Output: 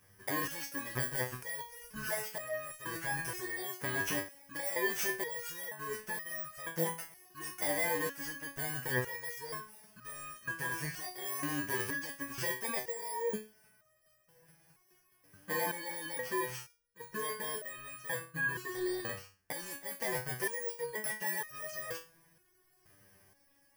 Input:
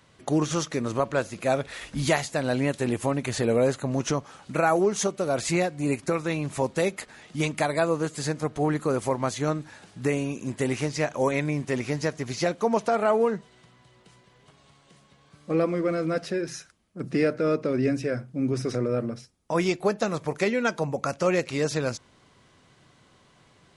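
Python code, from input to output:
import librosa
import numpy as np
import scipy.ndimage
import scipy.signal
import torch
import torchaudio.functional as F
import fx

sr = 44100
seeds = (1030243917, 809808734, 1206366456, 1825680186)

p1 = fx.bit_reversed(x, sr, seeds[0], block=32)
p2 = fx.over_compress(p1, sr, threshold_db=-27.0, ratio=-0.5)
p3 = p1 + F.gain(torch.from_numpy(p2), -0.5).numpy()
p4 = fx.graphic_eq_15(p3, sr, hz=(250, 1600, 4000), db=(-7, 11, -4))
p5 = fx.resonator_held(p4, sr, hz=2.1, low_hz=97.0, high_hz=620.0)
y = F.gain(torch.from_numpy(p5), -2.5).numpy()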